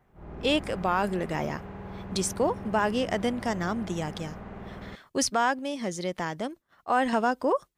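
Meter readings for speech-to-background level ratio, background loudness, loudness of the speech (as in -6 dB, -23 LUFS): 13.0 dB, -41.5 LUFS, -28.5 LUFS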